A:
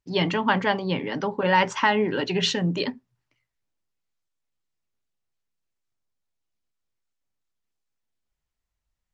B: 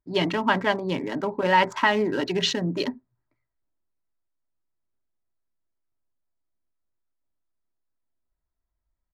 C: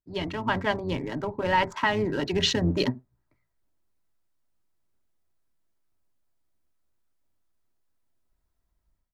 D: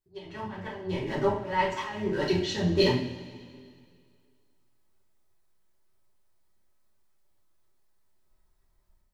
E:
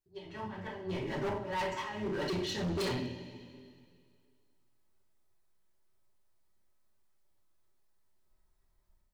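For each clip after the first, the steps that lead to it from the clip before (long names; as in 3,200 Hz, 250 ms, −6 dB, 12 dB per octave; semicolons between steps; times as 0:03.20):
adaptive Wiener filter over 15 samples; comb filter 3.1 ms, depth 34%
sub-octave generator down 1 octave, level −4 dB; automatic gain control gain up to 15 dB; level −8.5 dB
volume swells 636 ms; coupled-rooms reverb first 0.47 s, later 2.2 s, from −16 dB, DRR −7.5 dB; level −2 dB
gain into a clipping stage and back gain 27 dB; level −4 dB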